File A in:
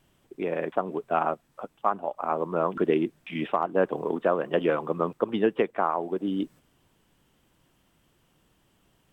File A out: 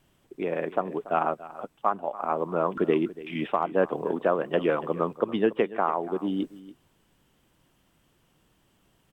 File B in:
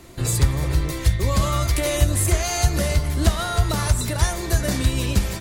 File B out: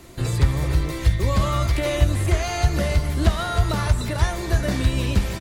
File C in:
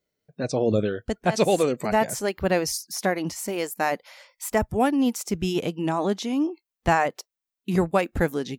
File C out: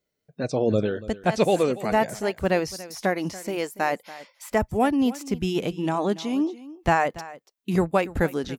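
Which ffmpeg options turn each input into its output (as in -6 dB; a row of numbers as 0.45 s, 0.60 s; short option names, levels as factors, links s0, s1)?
-filter_complex "[0:a]acrossover=split=4200[s0][s1];[s1]acompressor=threshold=0.0112:ratio=4:attack=1:release=60[s2];[s0][s2]amix=inputs=2:normalize=0,aecho=1:1:285:0.133"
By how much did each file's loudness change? 0.0 LU, -0.5 LU, 0.0 LU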